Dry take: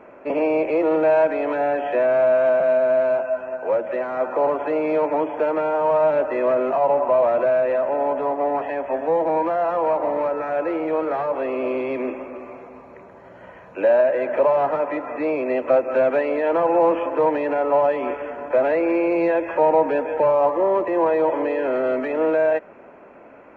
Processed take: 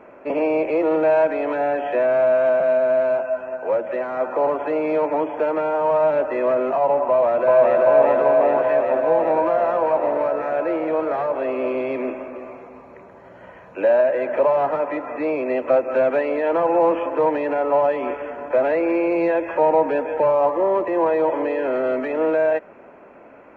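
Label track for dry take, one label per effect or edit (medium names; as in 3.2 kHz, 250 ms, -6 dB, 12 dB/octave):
7.080000	7.830000	echo throw 390 ms, feedback 80%, level 0 dB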